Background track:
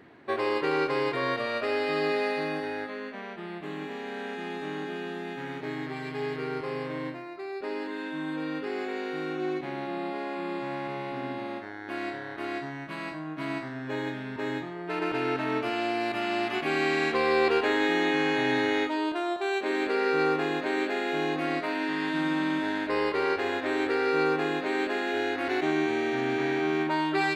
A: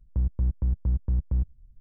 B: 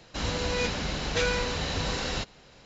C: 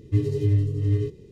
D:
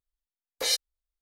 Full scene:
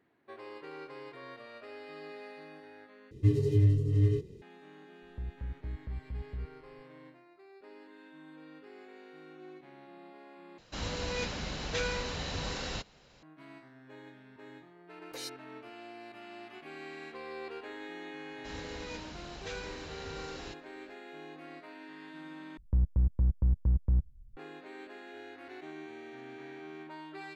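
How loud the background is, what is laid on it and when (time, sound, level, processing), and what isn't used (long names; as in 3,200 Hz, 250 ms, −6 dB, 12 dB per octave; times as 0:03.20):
background track −19 dB
0:03.11: overwrite with C −3 dB
0:05.02: mix in A −14 dB
0:10.58: overwrite with B −6.5 dB
0:14.53: mix in D −12.5 dB + downward compressor 1.5 to 1, threshold −33 dBFS
0:18.30: mix in B −15 dB
0:22.57: overwrite with A −1.5 dB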